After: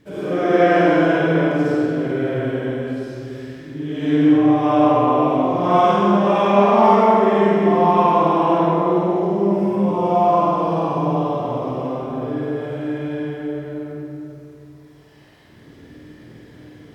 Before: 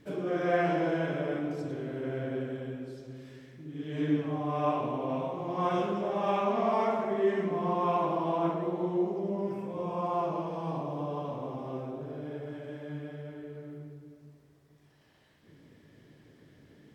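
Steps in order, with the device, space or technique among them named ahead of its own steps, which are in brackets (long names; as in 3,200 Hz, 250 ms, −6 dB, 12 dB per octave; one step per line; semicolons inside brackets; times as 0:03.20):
tunnel (flutter between parallel walls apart 8.5 metres, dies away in 0.63 s; convolution reverb RT60 2.0 s, pre-delay 58 ms, DRR −9 dB)
level +3 dB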